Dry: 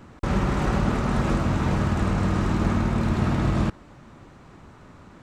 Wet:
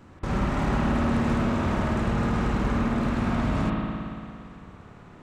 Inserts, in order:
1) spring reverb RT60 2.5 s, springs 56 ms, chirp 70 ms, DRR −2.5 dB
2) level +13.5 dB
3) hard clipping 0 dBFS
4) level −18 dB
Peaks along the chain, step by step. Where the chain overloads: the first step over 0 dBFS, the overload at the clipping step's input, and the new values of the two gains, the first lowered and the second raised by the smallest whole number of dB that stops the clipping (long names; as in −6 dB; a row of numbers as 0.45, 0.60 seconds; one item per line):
−7.5, +6.0, 0.0, −18.0 dBFS
step 2, 6.0 dB
step 2 +7.5 dB, step 4 −12 dB